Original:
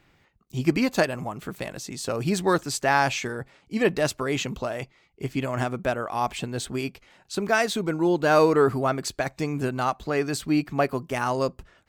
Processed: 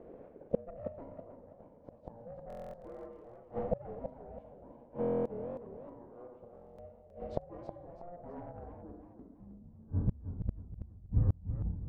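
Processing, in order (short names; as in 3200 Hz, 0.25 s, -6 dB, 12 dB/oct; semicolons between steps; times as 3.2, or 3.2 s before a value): Schroeder reverb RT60 1.1 s, combs from 27 ms, DRR 2 dB; ring modulator 350 Hz; low-pass sweep 560 Hz -> 110 Hz, 8.48–10.13; soft clip -12 dBFS, distortion -20 dB; flipped gate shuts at -27 dBFS, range -35 dB; stuck buffer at 2.48/5/6.53, samples 1024, times 10; warbling echo 0.32 s, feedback 36%, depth 177 cents, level -9 dB; gain +10 dB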